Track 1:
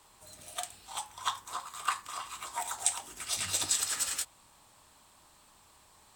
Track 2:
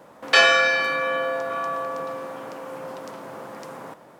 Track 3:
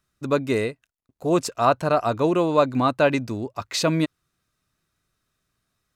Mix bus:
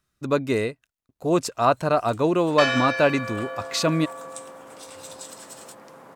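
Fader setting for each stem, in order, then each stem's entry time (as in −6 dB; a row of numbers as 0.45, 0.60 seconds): −12.0, −8.5, −0.5 decibels; 1.50, 2.25, 0.00 seconds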